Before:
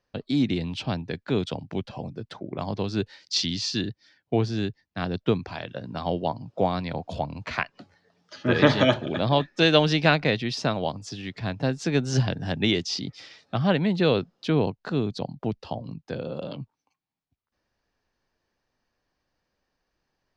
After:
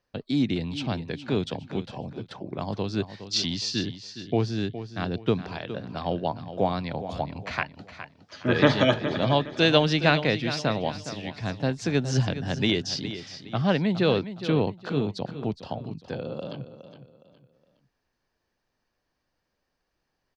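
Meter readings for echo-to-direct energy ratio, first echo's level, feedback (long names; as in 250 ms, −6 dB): −11.5 dB, −12.0 dB, 33%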